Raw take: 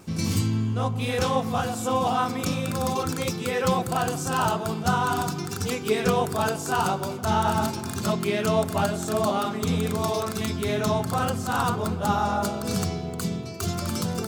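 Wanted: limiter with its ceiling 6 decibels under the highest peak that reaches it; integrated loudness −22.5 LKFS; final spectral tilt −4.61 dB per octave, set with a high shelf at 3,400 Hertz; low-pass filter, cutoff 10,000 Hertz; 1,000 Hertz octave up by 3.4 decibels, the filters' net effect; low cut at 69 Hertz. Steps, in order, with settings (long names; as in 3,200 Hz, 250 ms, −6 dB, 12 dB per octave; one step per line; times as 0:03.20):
high-pass filter 69 Hz
low-pass filter 10,000 Hz
parametric band 1,000 Hz +4 dB
high-shelf EQ 3,400 Hz +3.5 dB
level +3 dB
brickwall limiter −11.5 dBFS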